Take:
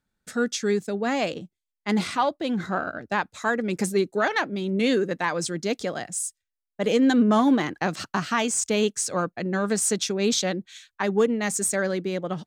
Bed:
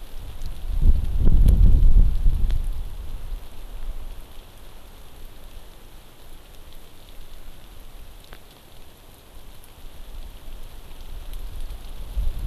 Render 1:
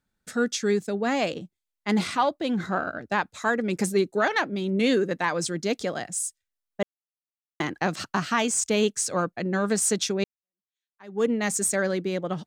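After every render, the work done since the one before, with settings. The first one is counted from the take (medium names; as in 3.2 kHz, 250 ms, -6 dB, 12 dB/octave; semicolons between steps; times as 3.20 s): 6.83–7.60 s: mute; 10.24–11.26 s: fade in exponential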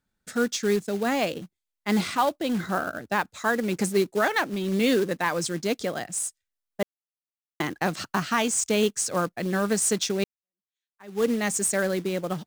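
short-mantissa float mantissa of 2-bit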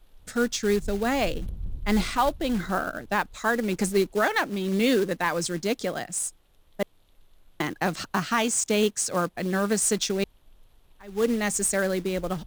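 add bed -19 dB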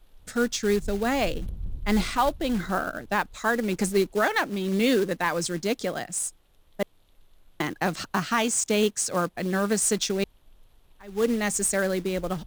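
no audible change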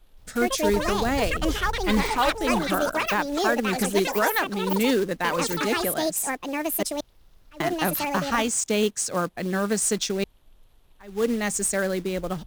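ever faster or slower copies 172 ms, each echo +7 st, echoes 2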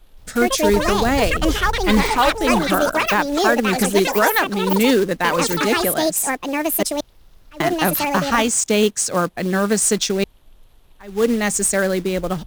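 trim +6.5 dB; peak limiter -3 dBFS, peak gain reduction 1.5 dB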